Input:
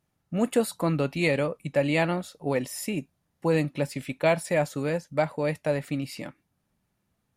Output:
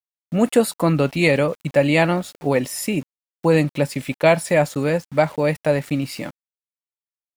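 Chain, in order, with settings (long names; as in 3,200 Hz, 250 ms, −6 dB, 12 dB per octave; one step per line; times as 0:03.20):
centre clipping without the shift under −46.5 dBFS
level +7.5 dB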